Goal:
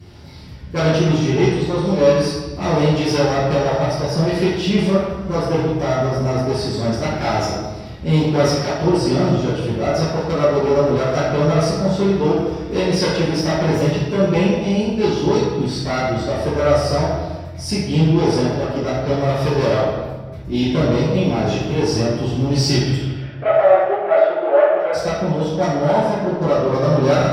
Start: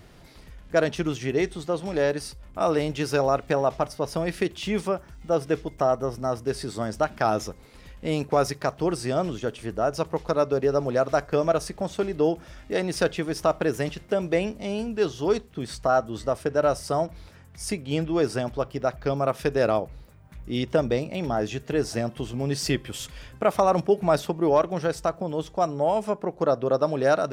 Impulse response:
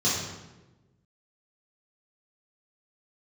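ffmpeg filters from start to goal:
-filter_complex "[0:a]aeval=exprs='clip(val(0),-1,0.0631)':c=same,asplit=3[a][b][c];[a]afade=t=out:st=22.94:d=0.02[d];[b]highpass=f=430:w=0.5412,highpass=f=430:w=1.3066,equalizer=f=440:t=q:w=4:g=-4,equalizer=f=660:t=q:w=4:g=10,equalizer=f=990:t=q:w=4:g=-10,equalizer=f=1.4k:t=q:w=4:g=4,lowpass=f=2.5k:w=0.5412,lowpass=f=2.5k:w=1.3066,afade=t=in:st=22.94:d=0.02,afade=t=out:st=24.92:d=0.02[e];[c]afade=t=in:st=24.92:d=0.02[f];[d][e][f]amix=inputs=3:normalize=0[g];[1:a]atrim=start_sample=2205,asetrate=34839,aresample=44100[h];[g][h]afir=irnorm=-1:irlink=0,volume=-6.5dB"

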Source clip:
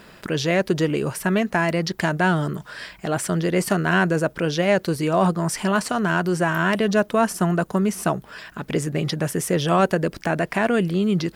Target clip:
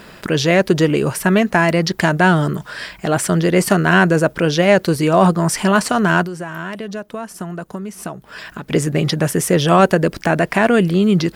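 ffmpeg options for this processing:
-filter_complex "[0:a]asettb=1/sr,asplit=3[a][b][c];[a]atrim=end=6.234[d];[b]atrim=start=6.23:end=8.71,asetpts=PTS-STARTPTS,afade=t=in:d=0.004:c=qsin,afade=t=out:st=2.476:d=0.004:c=qsin,acompressor=threshold=-33dB:ratio=5[e];[c]atrim=start=8.706[f];[d][e]acrossfade=d=0.004:c1=hsin:c2=qsin[g];[g][f]acrossfade=d=0.004:c1=qsin:c2=hsin,volume=6.5dB"

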